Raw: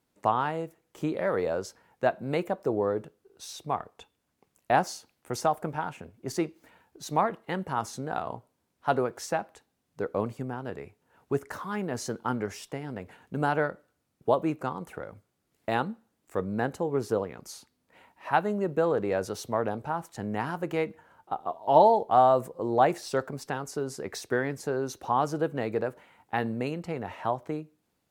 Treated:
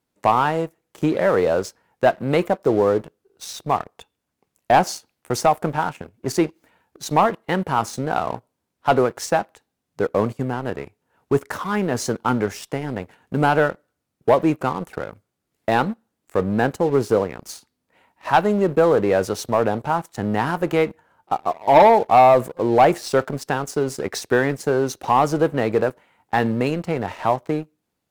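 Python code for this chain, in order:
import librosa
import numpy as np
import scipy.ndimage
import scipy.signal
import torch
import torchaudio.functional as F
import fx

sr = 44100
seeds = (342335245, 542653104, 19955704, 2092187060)

y = fx.leveller(x, sr, passes=2)
y = y * 10.0 ** (2.5 / 20.0)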